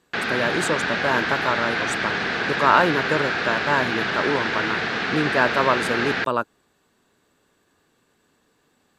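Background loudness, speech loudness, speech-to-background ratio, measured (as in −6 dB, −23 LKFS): −23.5 LKFS, −24.0 LKFS, −0.5 dB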